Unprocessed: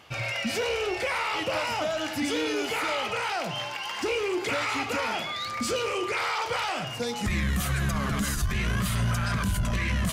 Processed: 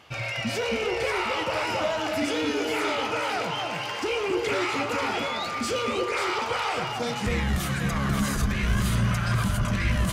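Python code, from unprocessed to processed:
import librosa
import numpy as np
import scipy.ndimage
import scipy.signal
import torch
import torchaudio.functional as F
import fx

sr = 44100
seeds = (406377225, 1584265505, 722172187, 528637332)

p1 = fx.high_shelf(x, sr, hz=9000.0, db=-4.5)
y = p1 + fx.echo_alternate(p1, sr, ms=269, hz=1300.0, feedback_pct=58, wet_db=-2.0, dry=0)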